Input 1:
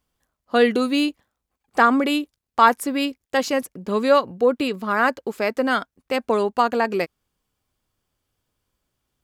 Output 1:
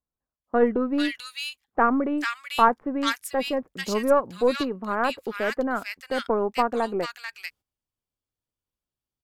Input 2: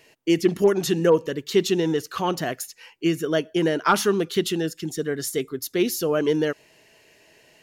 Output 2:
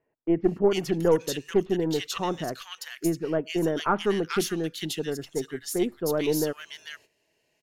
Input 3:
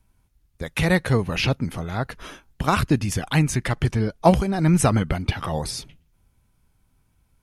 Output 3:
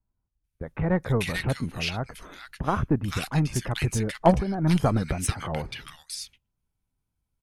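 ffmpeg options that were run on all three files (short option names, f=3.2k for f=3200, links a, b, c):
-filter_complex "[0:a]aeval=exprs='0.891*(cos(1*acos(clip(val(0)/0.891,-1,1)))-cos(1*PI/2))+0.112*(cos(3*acos(clip(val(0)/0.891,-1,1)))-cos(3*PI/2))+0.0316*(cos(6*acos(clip(val(0)/0.891,-1,1)))-cos(6*PI/2))':c=same,acrossover=split=1600[a][b];[b]adelay=440[c];[a][c]amix=inputs=2:normalize=0,agate=range=-12dB:threshold=-51dB:ratio=16:detection=peak"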